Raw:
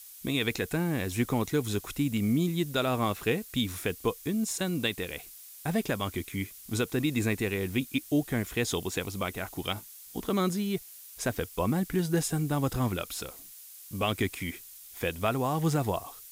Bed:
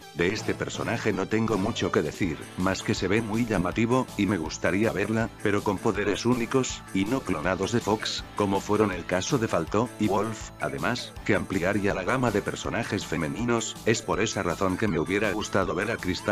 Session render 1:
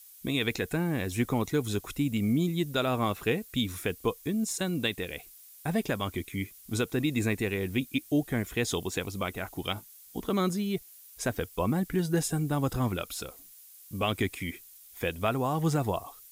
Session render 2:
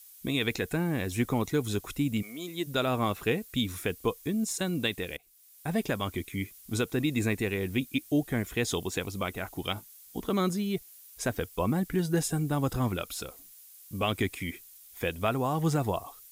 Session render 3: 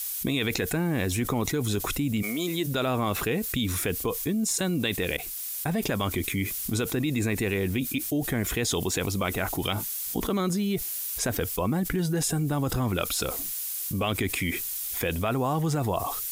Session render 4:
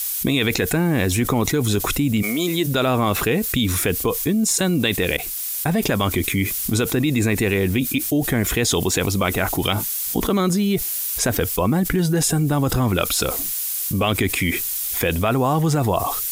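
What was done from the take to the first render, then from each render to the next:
denoiser 6 dB, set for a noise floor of -49 dBFS
2.21–2.66 HPF 990 Hz -> 270 Hz; 5.17–5.8 fade in, from -19.5 dB
limiter -20 dBFS, peak gain reduction 4.5 dB; fast leveller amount 70%
gain +7.5 dB; limiter -3 dBFS, peak gain reduction 1.5 dB

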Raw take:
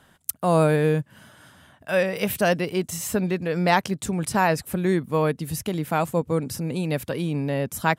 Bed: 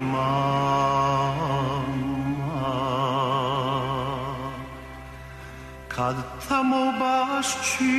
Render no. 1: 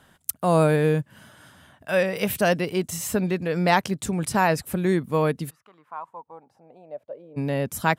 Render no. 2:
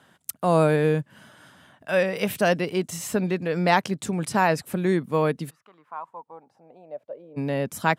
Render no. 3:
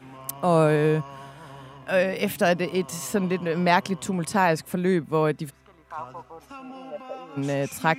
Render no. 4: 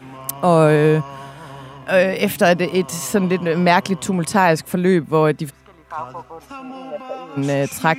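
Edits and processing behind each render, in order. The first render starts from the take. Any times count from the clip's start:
5.49–7.36 band-pass 1300 Hz -> 520 Hz, Q 9.1
HPF 130 Hz; high shelf 11000 Hz -9.5 dB
add bed -19 dB
gain +7 dB; limiter -2 dBFS, peak gain reduction 3 dB

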